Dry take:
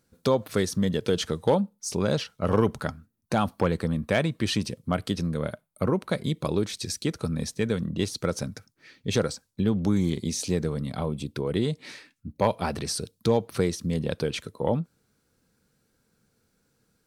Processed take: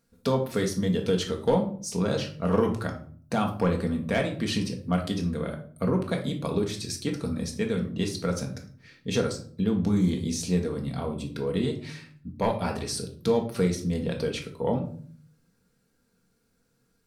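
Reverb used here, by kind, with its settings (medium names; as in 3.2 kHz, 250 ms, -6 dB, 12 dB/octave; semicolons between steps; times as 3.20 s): simulated room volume 480 m³, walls furnished, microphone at 1.7 m; trim -3.5 dB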